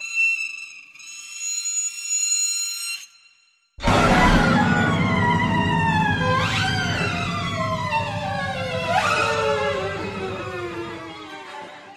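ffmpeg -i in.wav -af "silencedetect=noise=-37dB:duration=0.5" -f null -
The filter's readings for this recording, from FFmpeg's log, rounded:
silence_start: 3.05
silence_end: 3.79 | silence_duration: 0.74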